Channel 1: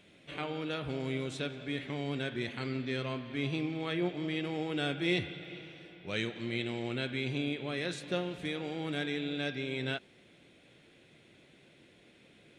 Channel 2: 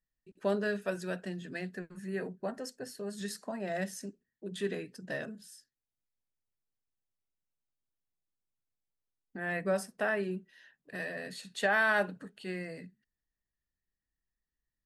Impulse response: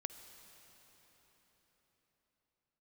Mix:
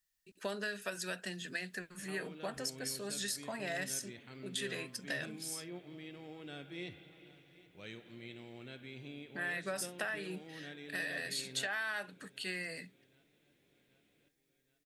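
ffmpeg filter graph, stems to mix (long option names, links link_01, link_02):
-filter_complex "[0:a]adelay=1700,volume=-14.5dB,asplit=2[link_01][link_02];[link_02]volume=-19.5dB[link_03];[1:a]tiltshelf=frequency=1300:gain=-9,acompressor=threshold=-38dB:ratio=8,volume=3dB[link_04];[link_03]aecho=0:1:777|1554|2331|3108|3885|4662|5439|6216|6993|7770:1|0.6|0.36|0.216|0.13|0.0778|0.0467|0.028|0.0168|0.0101[link_05];[link_01][link_04][link_05]amix=inputs=3:normalize=0"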